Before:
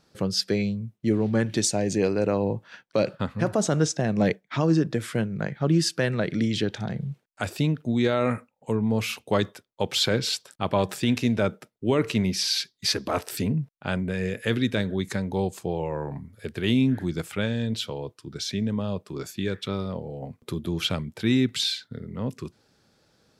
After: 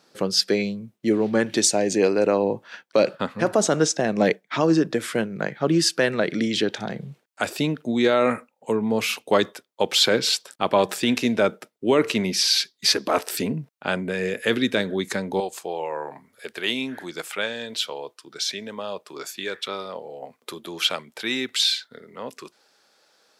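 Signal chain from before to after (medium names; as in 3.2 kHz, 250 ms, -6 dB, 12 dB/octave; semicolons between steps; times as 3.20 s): high-pass 270 Hz 12 dB/octave, from 15.40 s 590 Hz; trim +5.5 dB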